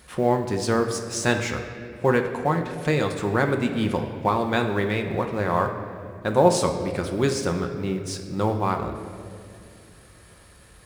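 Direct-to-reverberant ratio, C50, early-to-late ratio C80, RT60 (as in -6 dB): 4.0 dB, 7.5 dB, 8.5 dB, 2.4 s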